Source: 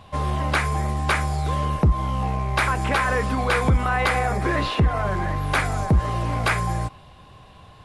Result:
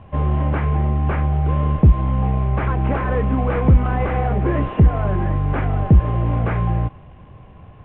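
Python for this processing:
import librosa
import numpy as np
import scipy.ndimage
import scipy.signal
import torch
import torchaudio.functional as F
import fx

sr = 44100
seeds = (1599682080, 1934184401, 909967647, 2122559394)

y = fx.cvsd(x, sr, bps=16000)
y = fx.tilt_shelf(y, sr, db=7.5, hz=810.0)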